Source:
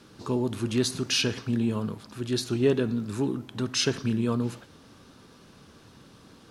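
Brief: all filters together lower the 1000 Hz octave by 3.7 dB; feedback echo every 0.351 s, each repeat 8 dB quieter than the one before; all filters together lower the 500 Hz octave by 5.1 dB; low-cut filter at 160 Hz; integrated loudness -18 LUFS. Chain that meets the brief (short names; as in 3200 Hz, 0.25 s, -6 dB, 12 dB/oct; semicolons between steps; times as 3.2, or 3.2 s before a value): HPF 160 Hz; bell 500 Hz -6.5 dB; bell 1000 Hz -3 dB; feedback echo 0.351 s, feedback 40%, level -8 dB; gain +11.5 dB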